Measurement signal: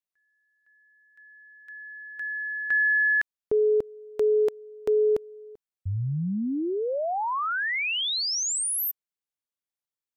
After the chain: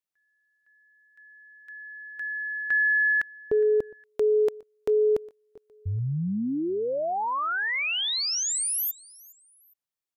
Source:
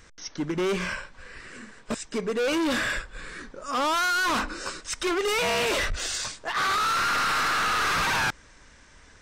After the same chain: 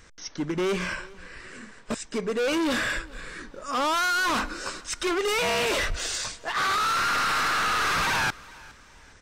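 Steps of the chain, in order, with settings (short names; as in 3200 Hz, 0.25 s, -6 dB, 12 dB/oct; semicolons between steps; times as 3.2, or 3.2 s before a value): feedback echo 0.412 s, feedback 36%, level -23 dB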